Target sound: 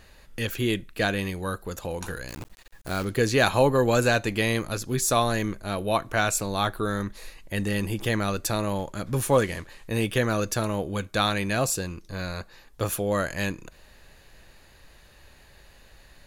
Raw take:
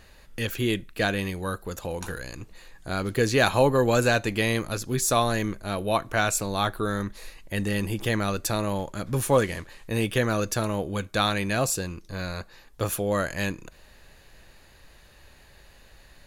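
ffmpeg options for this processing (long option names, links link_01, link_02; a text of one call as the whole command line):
ffmpeg -i in.wav -filter_complex "[0:a]asettb=1/sr,asplit=3[link_01][link_02][link_03];[link_01]atrim=end=2.284[link_04];[link_02]atrim=start=2.28:end=3.05,asetpts=PTS-STARTPTS,afade=type=in:duration=0.004:curve=qsin,afade=type=out:start_time=0.766:duration=0.004:curve=qsin,acrusher=bits=7:dc=4:mix=0:aa=0.000001[link_05];[link_03]atrim=start=3.046[link_06];[link_04][link_05]acrossfade=duration=0.004:curve1=hsin:curve2=qsin[link_07];[link_07][link_06]acrossfade=duration=0.004:curve1=qsin:curve2=hsin" out.wav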